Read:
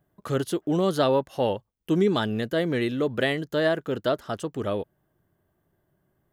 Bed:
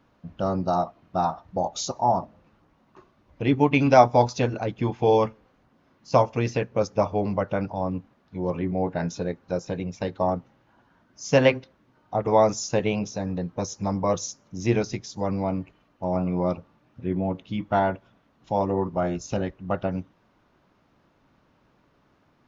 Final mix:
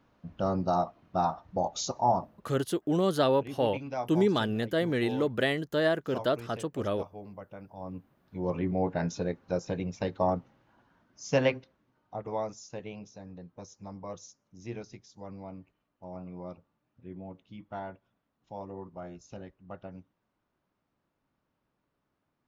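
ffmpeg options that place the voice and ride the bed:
ffmpeg -i stem1.wav -i stem2.wav -filter_complex "[0:a]adelay=2200,volume=-3dB[link_01];[1:a]volume=13dB,afade=type=out:start_time=2.11:duration=0.66:silence=0.158489,afade=type=in:start_time=7.67:duration=0.93:silence=0.149624,afade=type=out:start_time=10.37:duration=2.18:silence=0.199526[link_02];[link_01][link_02]amix=inputs=2:normalize=0" out.wav

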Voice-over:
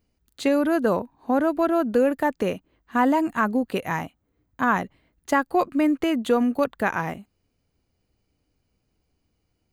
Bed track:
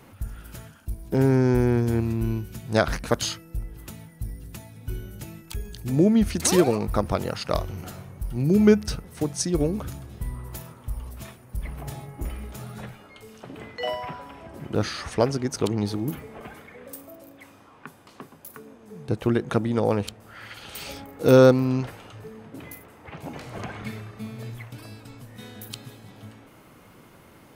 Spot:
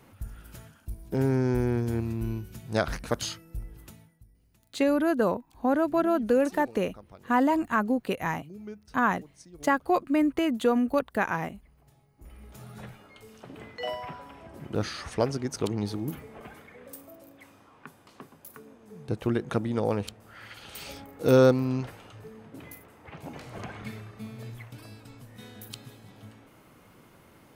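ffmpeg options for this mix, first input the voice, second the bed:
ffmpeg -i stem1.wav -i stem2.wav -filter_complex "[0:a]adelay=4350,volume=-3dB[link_01];[1:a]volume=15.5dB,afade=type=out:start_time=3.73:duration=0.52:silence=0.1,afade=type=in:start_time=12.16:duration=0.72:silence=0.0891251[link_02];[link_01][link_02]amix=inputs=2:normalize=0" out.wav

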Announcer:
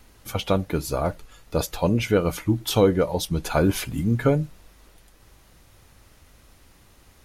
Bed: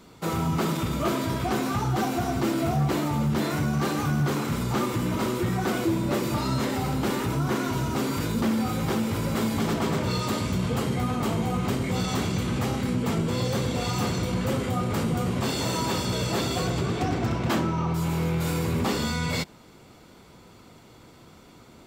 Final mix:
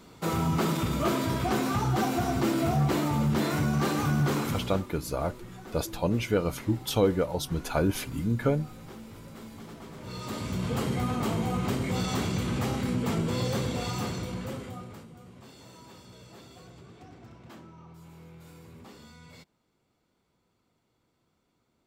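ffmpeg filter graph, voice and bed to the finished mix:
ffmpeg -i stem1.wav -i stem2.wav -filter_complex "[0:a]adelay=4200,volume=-5.5dB[link_01];[1:a]volume=15.5dB,afade=type=out:start_time=4.39:duration=0.44:silence=0.125893,afade=type=in:start_time=9.96:duration=0.86:silence=0.149624,afade=type=out:start_time=13.51:duration=1.56:silence=0.0891251[link_02];[link_01][link_02]amix=inputs=2:normalize=0" out.wav

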